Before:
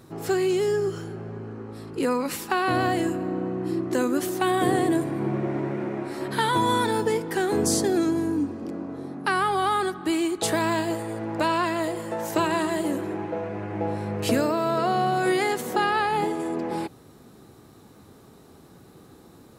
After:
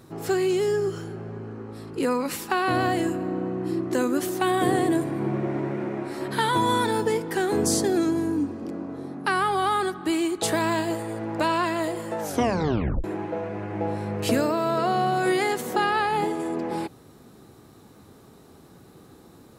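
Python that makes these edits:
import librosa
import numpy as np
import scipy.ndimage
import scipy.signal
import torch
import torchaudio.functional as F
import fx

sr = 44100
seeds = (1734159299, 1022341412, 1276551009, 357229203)

y = fx.edit(x, sr, fx.tape_stop(start_s=12.2, length_s=0.84), tone=tone)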